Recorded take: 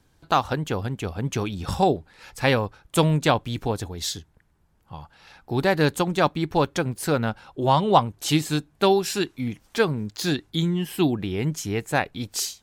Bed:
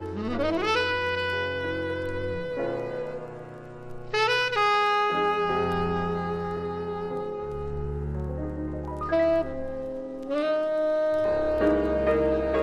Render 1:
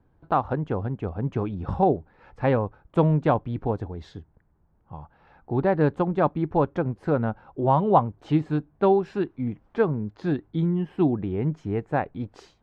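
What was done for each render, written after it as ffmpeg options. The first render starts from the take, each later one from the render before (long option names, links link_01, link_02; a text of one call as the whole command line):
ffmpeg -i in.wav -af "lowpass=1100" out.wav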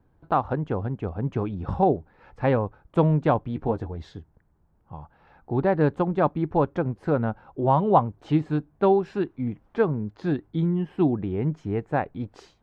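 ffmpeg -i in.wav -filter_complex "[0:a]asettb=1/sr,asplit=3[link_01][link_02][link_03];[link_01]atrim=end=3.484[link_04];[link_02]atrim=start=3.48:end=4.02,asetpts=PTS-STARTPTS,afade=type=in:duration=0.004:curve=qsin,afade=type=out:start_time=0.536:duration=0.004:curve=qsin,asplit=2[link_05][link_06];[link_06]adelay=13,volume=-8dB[link_07];[link_05][link_07]amix=inputs=2:normalize=0,atrim=end_sample=23814[link_08];[link_03]atrim=start=4.016[link_09];[link_04][link_08]acrossfade=duration=0.004:curve1=hsin:curve2=qsin[link_10];[link_10][link_09]acrossfade=duration=0.004:curve1=qsin:curve2=hsin" out.wav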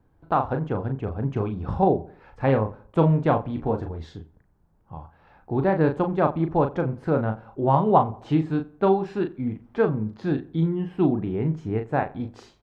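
ffmpeg -i in.wav -filter_complex "[0:a]asplit=2[link_01][link_02];[link_02]adelay=37,volume=-6.5dB[link_03];[link_01][link_03]amix=inputs=2:normalize=0,asplit=2[link_04][link_05];[link_05]adelay=88,lowpass=frequency=2100:poles=1,volume=-20dB,asplit=2[link_06][link_07];[link_07]adelay=88,lowpass=frequency=2100:poles=1,volume=0.4,asplit=2[link_08][link_09];[link_09]adelay=88,lowpass=frequency=2100:poles=1,volume=0.4[link_10];[link_04][link_06][link_08][link_10]amix=inputs=4:normalize=0" out.wav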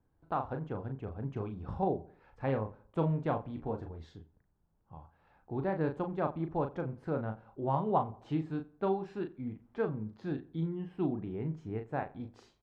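ffmpeg -i in.wav -af "volume=-11.5dB" out.wav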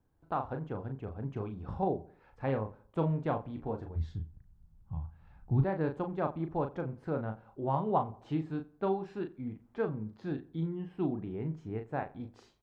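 ffmpeg -i in.wav -filter_complex "[0:a]asplit=3[link_01][link_02][link_03];[link_01]afade=type=out:start_time=3.95:duration=0.02[link_04];[link_02]asubboost=boost=10:cutoff=140,afade=type=in:start_time=3.95:duration=0.02,afade=type=out:start_time=5.63:duration=0.02[link_05];[link_03]afade=type=in:start_time=5.63:duration=0.02[link_06];[link_04][link_05][link_06]amix=inputs=3:normalize=0" out.wav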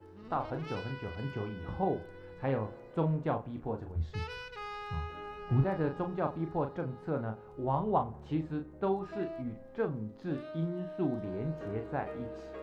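ffmpeg -i in.wav -i bed.wav -filter_complex "[1:a]volume=-19.5dB[link_01];[0:a][link_01]amix=inputs=2:normalize=0" out.wav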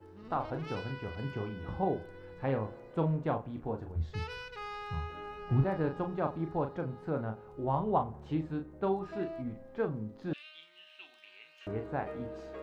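ffmpeg -i in.wav -filter_complex "[0:a]asettb=1/sr,asplit=3[link_01][link_02][link_03];[link_01]atrim=end=10.334[link_04];[link_02]atrim=start=10.33:end=11.67,asetpts=PTS-STARTPTS,afade=type=in:duration=0.004:curve=qsin,afade=type=out:start_time=1.336:duration=0.004:curve=qsin,highpass=frequency=2700:width_type=q:width=5.2[link_05];[link_03]atrim=start=11.666[link_06];[link_04][link_05]acrossfade=duration=0.004:curve1=hsin:curve2=qsin[link_07];[link_07][link_06]acrossfade=duration=0.004:curve1=qsin:curve2=hsin" out.wav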